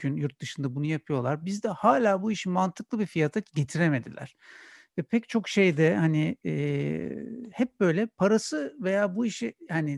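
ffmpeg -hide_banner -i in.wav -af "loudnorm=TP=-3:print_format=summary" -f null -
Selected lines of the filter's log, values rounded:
Input Integrated:    -27.4 LUFS
Input True Peak:      -8.4 dBTP
Input LRA:             1.7 LU
Input Threshold:     -37.8 LUFS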